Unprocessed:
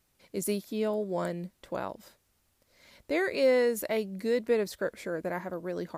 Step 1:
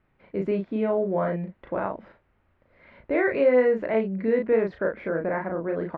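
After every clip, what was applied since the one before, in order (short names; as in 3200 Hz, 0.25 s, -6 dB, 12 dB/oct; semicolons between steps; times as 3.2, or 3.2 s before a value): LPF 2200 Hz 24 dB/oct; in parallel at -0.5 dB: limiter -25 dBFS, peak gain reduction 10 dB; on the sum: doubler 36 ms -3.5 dB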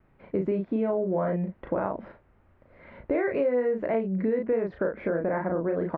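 high shelf 2100 Hz -11 dB; compressor 4:1, threshold -31 dBFS, peak gain reduction 13 dB; vibrato 1.6 Hz 32 cents; gain +6.5 dB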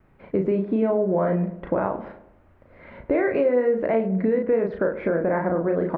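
tape echo 0.102 s, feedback 55%, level -11 dB, low-pass 1100 Hz; gain +4.5 dB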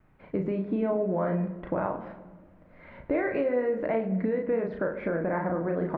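bell 430 Hz -4 dB 0.74 oct; reverb RT60 1.6 s, pre-delay 7 ms, DRR 11.5 dB; gain -4 dB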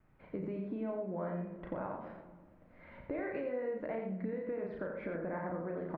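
compressor 2:1, threshold -33 dBFS, peak gain reduction 6.5 dB; echo 87 ms -6 dB; gain -6.5 dB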